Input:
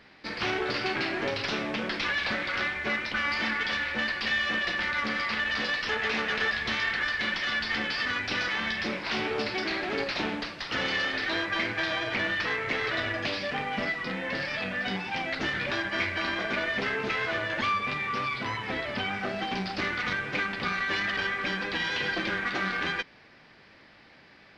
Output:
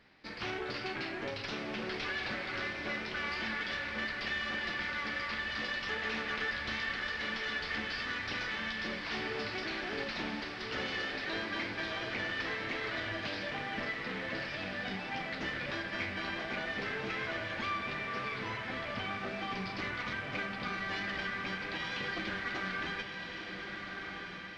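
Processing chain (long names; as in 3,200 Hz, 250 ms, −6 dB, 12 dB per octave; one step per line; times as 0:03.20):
low-shelf EQ 140 Hz +4.5 dB
feedback delay with all-pass diffusion 1,379 ms, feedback 44%, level −4.5 dB
level −9 dB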